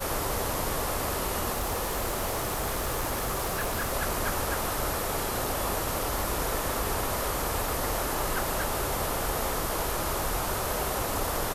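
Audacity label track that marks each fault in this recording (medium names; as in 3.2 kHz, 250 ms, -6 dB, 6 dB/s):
1.540000	3.940000	clipped -25 dBFS
6.190000	6.190000	pop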